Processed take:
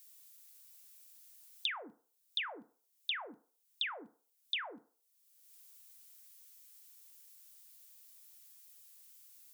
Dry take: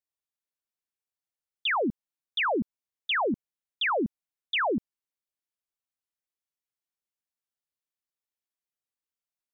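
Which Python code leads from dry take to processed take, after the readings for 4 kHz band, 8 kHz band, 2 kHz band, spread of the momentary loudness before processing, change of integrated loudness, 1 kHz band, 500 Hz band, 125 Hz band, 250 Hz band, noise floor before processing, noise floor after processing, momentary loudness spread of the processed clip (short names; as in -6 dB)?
-5.5 dB, n/a, -12.0 dB, 8 LU, -11.0 dB, -18.0 dB, -22.5 dB, under -30 dB, -25.5 dB, under -85 dBFS, -79 dBFS, 18 LU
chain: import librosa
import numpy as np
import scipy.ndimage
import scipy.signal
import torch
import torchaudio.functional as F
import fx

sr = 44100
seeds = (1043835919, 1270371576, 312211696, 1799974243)

y = np.diff(x, prepend=0.0)
y = fx.rev_fdn(y, sr, rt60_s=0.36, lf_ratio=0.7, hf_ratio=0.5, size_ms=20.0, drr_db=12.0)
y = fx.band_squash(y, sr, depth_pct=100)
y = y * librosa.db_to_amplitude(1.0)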